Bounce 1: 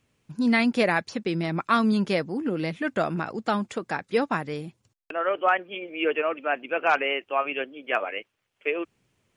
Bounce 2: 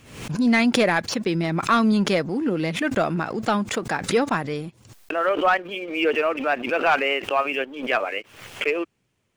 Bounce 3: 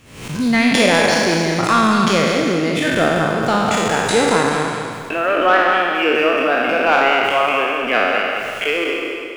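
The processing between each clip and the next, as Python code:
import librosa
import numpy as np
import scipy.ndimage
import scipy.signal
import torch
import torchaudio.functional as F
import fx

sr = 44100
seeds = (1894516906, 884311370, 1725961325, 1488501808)

y1 = fx.leveller(x, sr, passes=1)
y1 = fx.pre_swell(y1, sr, db_per_s=83.0)
y2 = fx.spec_trails(y1, sr, decay_s=1.88)
y2 = fx.echo_feedback(y2, sr, ms=199, feedback_pct=42, wet_db=-6)
y2 = y2 * librosa.db_to_amplitude(1.0)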